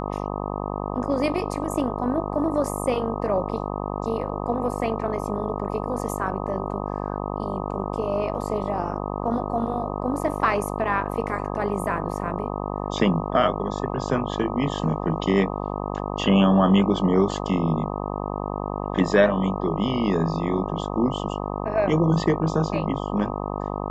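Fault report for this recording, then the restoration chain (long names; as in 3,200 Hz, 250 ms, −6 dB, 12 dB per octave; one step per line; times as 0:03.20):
mains buzz 50 Hz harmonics 25 −29 dBFS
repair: hum removal 50 Hz, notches 25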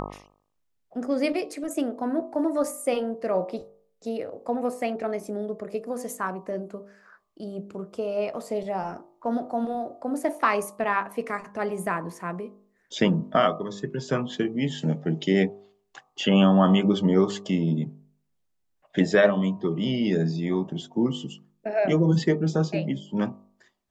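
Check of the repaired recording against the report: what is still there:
none of them is left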